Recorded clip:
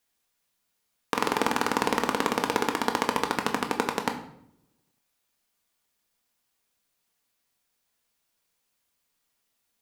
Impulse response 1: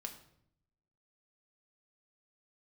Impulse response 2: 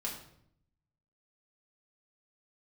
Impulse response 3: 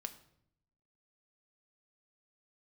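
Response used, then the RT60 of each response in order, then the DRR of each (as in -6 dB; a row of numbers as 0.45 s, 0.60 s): 1; 0.70 s, 0.70 s, 0.70 s; 3.5 dB, -3.0 dB, 8.0 dB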